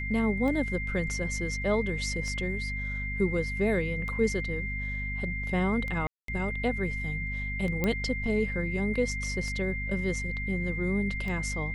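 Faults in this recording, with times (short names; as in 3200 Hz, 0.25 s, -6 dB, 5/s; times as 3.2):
hum 50 Hz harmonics 5 -35 dBFS
tick 33 1/3 rpm -24 dBFS
tone 2100 Hz -34 dBFS
6.07–6.28 gap 0.213 s
7.84 pop -14 dBFS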